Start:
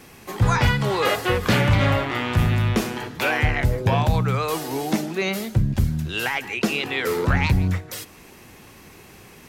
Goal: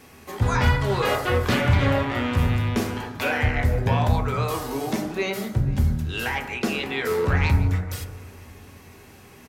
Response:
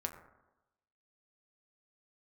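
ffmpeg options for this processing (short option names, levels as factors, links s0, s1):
-filter_complex "[0:a]asplit=2[s0][s1];[s1]adelay=481,lowpass=f=1700:p=1,volume=0.112,asplit=2[s2][s3];[s3]adelay=481,lowpass=f=1700:p=1,volume=0.37,asplit=2[s4][s5];[s5]adelay=481,lowpass=f=1700:p=1,volume=0.37[s6];[s0][s2][s4][s6]amix=inputs=4:normalize=0[s7];[1:a]atrim=start_sample=2205[s8];[s7][s8]afir=irnorm=-1:irlink=0,volume=0.794"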